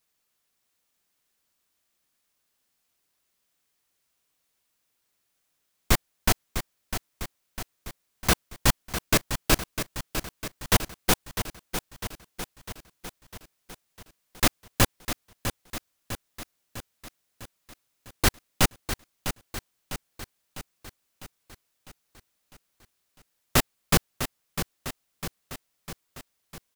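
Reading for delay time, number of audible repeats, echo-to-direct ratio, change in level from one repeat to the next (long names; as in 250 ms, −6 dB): 652 ms, 6, −7.5 dB, −4.5 dB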